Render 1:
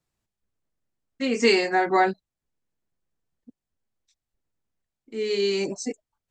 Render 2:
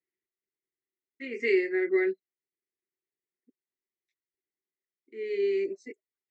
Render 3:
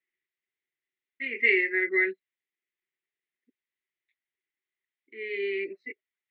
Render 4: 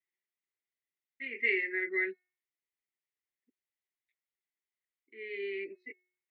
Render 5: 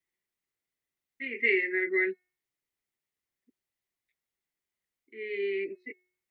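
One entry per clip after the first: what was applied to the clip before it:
two resonant band-passes 870 Hz, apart 2.4 oct
FFT filter 500 Hz 0 dB, 810 Hz -2 dB, 1.3 kHz +5 dB, 2 kHz +15 dB, 3.7 kHz +8 dB, 6.2 kHz -27 dB; trim -4.5 dB
de-hum 364.8 Hz, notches 7; trim -7 dB
bass shelf 400 Hz +7.5 dB; trim +3 dB

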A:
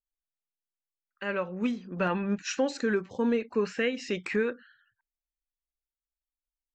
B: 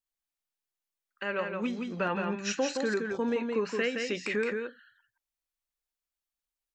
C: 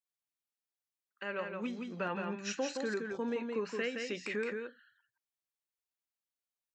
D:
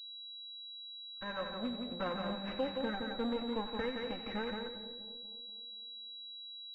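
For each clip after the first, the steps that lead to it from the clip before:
bass shelf 210 Hz -8 dB; in parallel at -1 dB: compression, threshold -37 dBFS, peak gain reduction 13 dB; on the sum: delay 169 ms -4.5 dB; trim -3 dB
high-pass 89 Hz; trim -6 dB
comb filter that takes the minimum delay 3.8 ms; two-band feedback delay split 720 Hz, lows 240 ms, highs 89 ms, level -9 dB; class-D stage that switches slowly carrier 3.9 kHz

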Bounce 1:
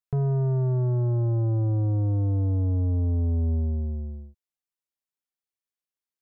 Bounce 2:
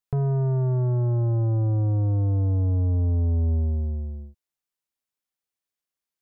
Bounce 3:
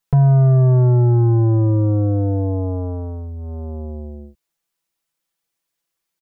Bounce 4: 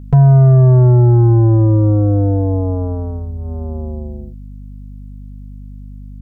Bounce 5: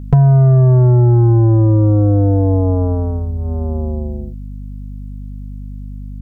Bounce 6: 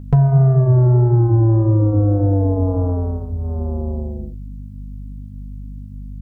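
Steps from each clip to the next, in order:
dynamic bell 240 Hz, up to -4 dB, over -40 dBFS, Q 0.75; trim +3 dB
comb 6 ms, depth 83%; trim +7.5 dB
hum 50 Hz, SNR 19 dB; trim +4.5 dB
compression, threshold -11 dBFS, peak gain reduction 5.5 dB; trim +4 dB
flange 1.7 Hz, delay 9.8 ms, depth 8.9 ms, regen -72%; trim +1 dB

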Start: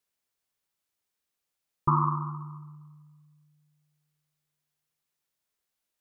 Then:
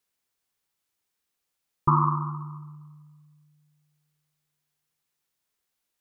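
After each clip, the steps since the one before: band-stop 610 Hz, Q 13; trim +3 dB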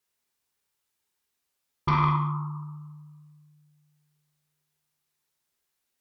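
Chebyshev shaper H 5 -13 dB, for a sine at -7.5 dBFS; gated-style reverb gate 250 ms falling, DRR 0 dB; trim -8.5 dB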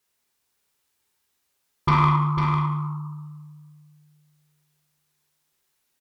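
in parallel at -11 dB: overload inside the chain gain 28 dB; on the sum: delay 499 ms -6 dB; trim +3.5 dB

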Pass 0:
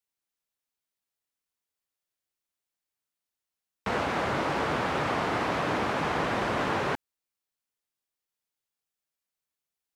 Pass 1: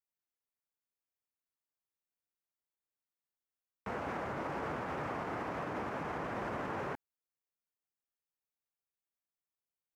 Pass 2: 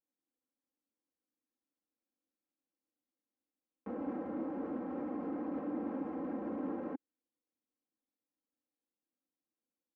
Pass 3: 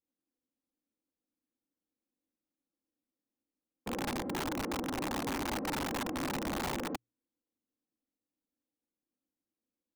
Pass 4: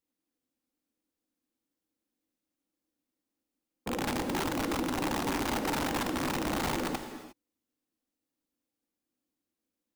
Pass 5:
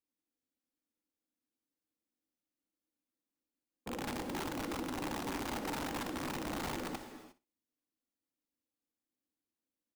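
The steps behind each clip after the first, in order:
peaking EQ 9.1 kHz -5.5 dB 0.98 oct; peak limiter -22 dBFS, peak gain reduction 5.5 dB; peaking EQ 3.8 kHz -10.5 dB 1.1 oct; trim -7 dB
comb 3.8 ms, depth 91%; peak limiter -36 dBFS, peak gain reduction 11 dB; band-pass filter 300 Hz, Q 2.3; trim +12 dB
tilt shelf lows +6.5 dB, about 670 Hz; hum notches 60/120 Hz; integer overflow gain 30 dB
gated-style reverb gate 380 ms flat, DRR 7.5 dB; trim +3.5 dB
feedback delay 62 ms, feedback 18%, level -16 dB; trim -7.5 dB

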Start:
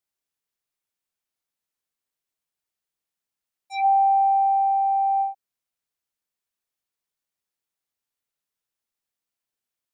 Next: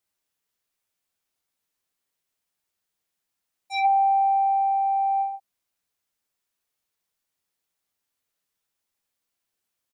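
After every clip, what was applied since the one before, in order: early reflections 11 ms -7.5 dB, 53 ms -8.5 dB; trim +4 dB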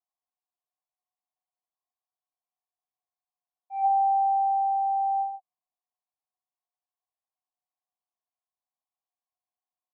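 cascade formant filter a; trim +2.5 dB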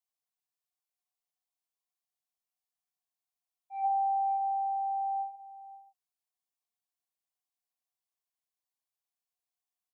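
treble shelf 2.1 kHz +10.5 dB; delay 531 ms -16.5 dB; trim -7.5 dB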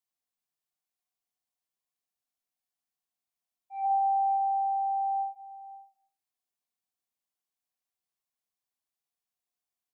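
on a send at -10.5 dB: low-pass 1.5 kHz + reverberation RT60 0.45 s, pre-delay 62 ms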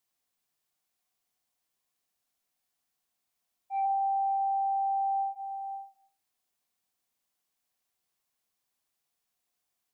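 compression 6:1, threshold -36 dBFS, peak gain reduction 11.5 dB; trim +8 dB

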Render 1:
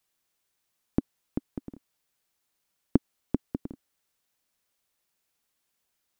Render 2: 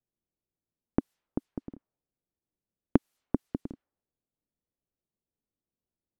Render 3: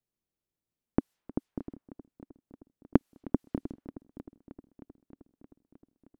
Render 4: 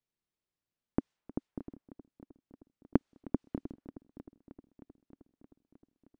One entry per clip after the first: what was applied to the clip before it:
level-controlled noise filter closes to 360 Hz, open at -31 dBFS
multi-head delay 311 ms, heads first and second, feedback 64%, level -20 dB
decimation joined by straight lines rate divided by 3×; trim -4 dB

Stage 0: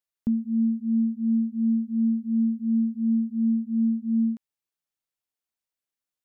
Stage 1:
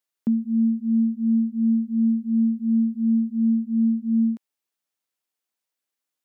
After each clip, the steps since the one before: high-pass 190 Hz; trim +4.5 dB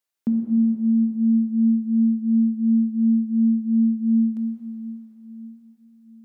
plate-style reverb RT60 4.4 s, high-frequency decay 0.8×, DRR 1.5 dB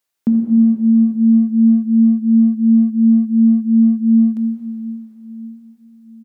speakerphone echo 80 ms, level -16 dB; trim +7 dB

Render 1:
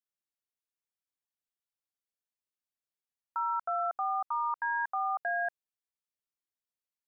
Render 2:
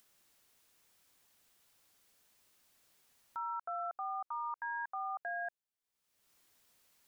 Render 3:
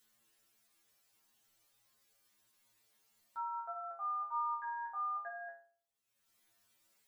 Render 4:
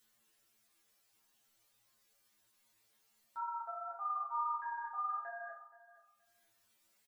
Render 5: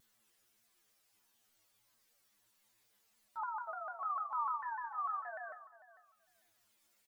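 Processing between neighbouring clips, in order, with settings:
peak limiter -31 dBFS, peak gain reduction 6 dB; upward compressor, threshold -49 dBFS; trim -1.5 dB
inharmonic resonator 110 Hz, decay 0.53 s, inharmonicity 0.002; trim +9 dB
flange 1.7 Hz, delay 9 ms, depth 5.2 ms, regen -57%; feedback delay 473 ms, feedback 17%, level -17 dB; trim +4 dB
vibrato with a chosen wave saw down 6.7 Hz, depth 160 cents

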